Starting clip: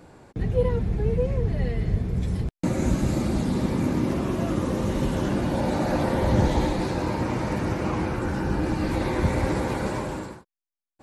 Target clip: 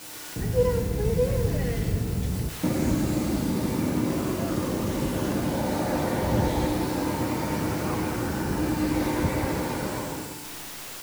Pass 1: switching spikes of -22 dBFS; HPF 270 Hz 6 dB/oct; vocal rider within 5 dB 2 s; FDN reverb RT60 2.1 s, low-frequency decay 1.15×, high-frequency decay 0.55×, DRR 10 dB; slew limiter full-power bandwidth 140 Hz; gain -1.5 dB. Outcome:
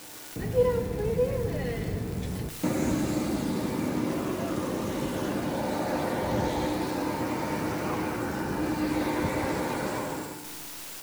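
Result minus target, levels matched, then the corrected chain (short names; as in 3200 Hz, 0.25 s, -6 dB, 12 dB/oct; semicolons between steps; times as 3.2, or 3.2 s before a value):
switching spikes: distortion -10 dB; 125 Hz band -3.0 dB
switching spikes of -11.5 dBFS; HPF 83 Hz 6 dB/oct; vocal rider within 5 dB 2 s; FDN reverb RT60 2.1 s, low-frequency decay 1.15×, high-frequency decay 0.55×, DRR 10 dB; slew limiter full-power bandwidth 140 Hz; gain -1.5 dB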